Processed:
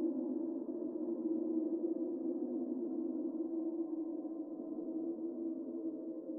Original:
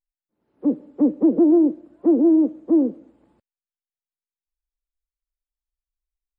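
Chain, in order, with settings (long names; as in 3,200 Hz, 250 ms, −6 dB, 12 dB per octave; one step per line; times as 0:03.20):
every overlapping window played backwards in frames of 31 ms
low-shelf EQ 160 Hz −11 dB
on a send: feedback delay with all-pass diffusion 485 ms, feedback 44%, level −7 dB
on the sum: spectral peaks only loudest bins 64
extreme stretch with random phases 18×, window 0.10 s, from 0:04.71
level +13.5 dB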